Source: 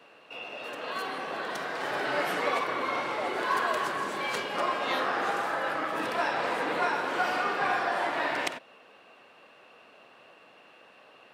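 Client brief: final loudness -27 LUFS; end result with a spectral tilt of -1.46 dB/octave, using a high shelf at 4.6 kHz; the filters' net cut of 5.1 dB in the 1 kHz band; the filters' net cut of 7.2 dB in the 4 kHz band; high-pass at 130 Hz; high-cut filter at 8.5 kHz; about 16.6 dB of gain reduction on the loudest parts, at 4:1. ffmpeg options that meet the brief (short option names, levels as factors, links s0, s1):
-af "highpass=130,lowpass=8500,equalizer=f=1000:t=o:g=-6,equalizer=f=4000:t=o:g=-7,highshelf=f=4600:g=-5.5,acompressor=threshold=0.00398:ratio=4,volume=11.9"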